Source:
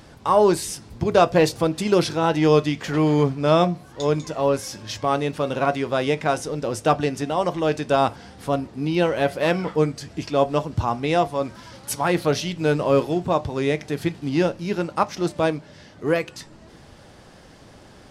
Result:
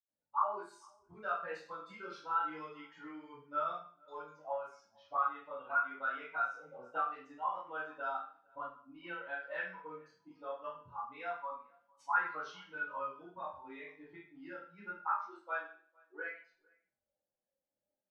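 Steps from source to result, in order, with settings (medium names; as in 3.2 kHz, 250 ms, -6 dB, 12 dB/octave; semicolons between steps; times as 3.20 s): expander on every frequency bin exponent 2; level-controlled noise filter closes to 2.2 kHz, open at -22 dBFS; compression 3:1, threshold -29 dBFS, peak gain reduction 11.5 dB; auto-wah 570–1400 Hz, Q 6.6, up, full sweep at -28.5 dBFS; chorus 0.25 Hz, delay 19 ms, depth 7.5 ms; 14.84–16.17 s: brick-wall FIR high-pass 290 Hz; echo from a far wall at 78 m, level -28 dB; reverberation RT60 0.45 s, pre-delay 77 ms; trim +11 dB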